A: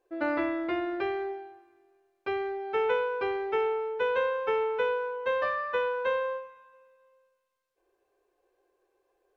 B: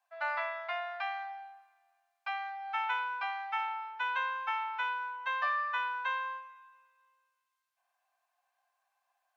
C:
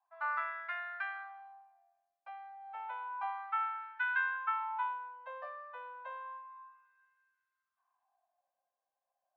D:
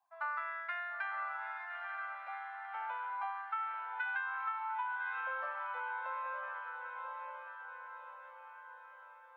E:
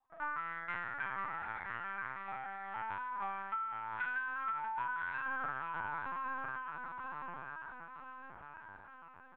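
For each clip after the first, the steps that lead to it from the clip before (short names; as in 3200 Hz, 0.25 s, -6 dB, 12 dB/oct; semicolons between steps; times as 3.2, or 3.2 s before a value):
steep high-pass 670 Hz 72 dB/oct
high shelf 5500 Hz +10 dB; wah 0.31 Hz 480–1600 Hz, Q 4.7; gain +4.5 dB
diffused feedback echo 0.943 s, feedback 53%, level -5 dB; compressor, threshold -36 dBFS, peak gain reduction 8 dB; gain +1.5 dB
on a send: feedback echo 0.488 s, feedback 59%, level -10 dB; on the sum: LPC vocoder at 8 kHz pitch kept; gain -1 dB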